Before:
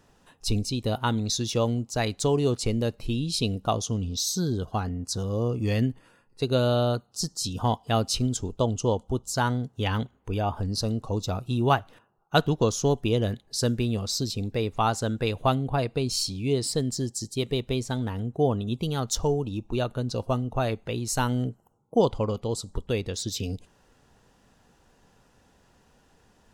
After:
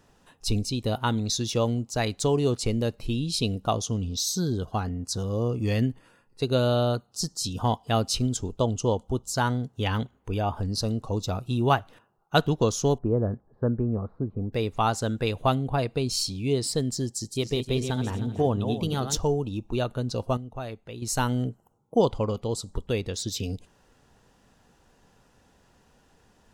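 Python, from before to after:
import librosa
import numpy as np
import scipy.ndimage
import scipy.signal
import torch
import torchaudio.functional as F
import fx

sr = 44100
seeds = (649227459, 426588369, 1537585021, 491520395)

y = fx.steep_lowpass(x, sr, hz=1400.0, slope=36, at=(12.98, 14.53))
y = fx.reverse_delay_fb(y, sr, ms=154, feedback_pct=46, wet_db=-7, at=(17.19, 19.17))
y = fx.edit(y, sr, fx.clip_gain(start_s=20.37, length_s=0.65, db=-9.0), tone=tone)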